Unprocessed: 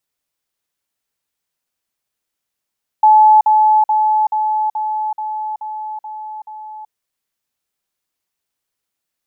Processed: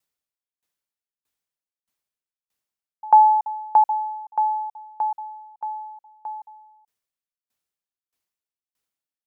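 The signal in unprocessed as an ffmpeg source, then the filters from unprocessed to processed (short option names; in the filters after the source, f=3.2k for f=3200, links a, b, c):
-f lavfi -i "aevalsrc='pow(10,(-5-3*floor(t/0.43))/20)*sin(2*PI*860*t)*clip(min(mod(t,0.43),0.38-mod(t,0.43))/0.005,0,1)':d=3.87:s=44100"
-af "aeval=exprs='val(0)*pow(10,-28*if(lt(mod(1.6*n/s,1),2*abs(1.6)/1000),1-mod(1.6*n/s,1)/(2*abs(1.6)/1000),(mod(1.6*n/s,1)-2*abs(1.6)/1000)/(1-2*abs(1.6)/1000))/20)':c=same"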